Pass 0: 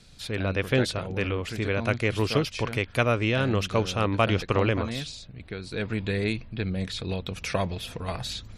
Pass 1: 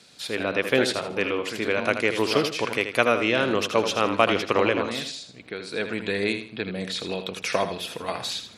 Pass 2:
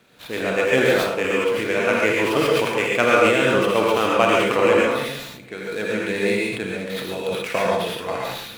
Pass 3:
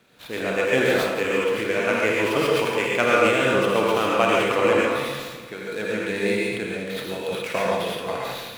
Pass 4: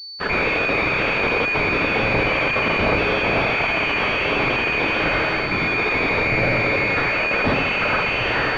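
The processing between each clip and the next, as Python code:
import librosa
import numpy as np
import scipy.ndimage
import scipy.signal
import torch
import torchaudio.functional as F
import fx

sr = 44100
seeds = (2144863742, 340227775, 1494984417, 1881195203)

y1 = scipy.signal.sosfilt(scipy.signal.butter(2, 280.0, 'highpass', fs=sr, output='sos'), x)
y1 = fx.echo_feedback(y1, sr, ms=80, feedback_pct=29, wet_db=-9)
y1 = y1 * librosa.db_to_amplitude(4.0)
y2 = scipy.signal.medfilt(y1, 9)
y2 = fx.rev_gated(y2, sr, seeds[0], gate_ms=160, shape='rising', drr_db=-3.0)
y2 = fx.sustainer(y2, sr, db_per_s=44.0)
y3 = fx.echo_feedback(y2, sr, ms=170, feedback_pct=51, wet_db=-10.5)
y3 = y3 * librosa.db_to_amplitude(-2.5)
y4 = fx.band_swap(y3, sr, width_hz=2000)
y4 = fx.fuzz(y4, sr, gain_db=42.0, gate_db=-45.0)
y4 = fx.pwm(y4, sr, carrier_hz=4500.0)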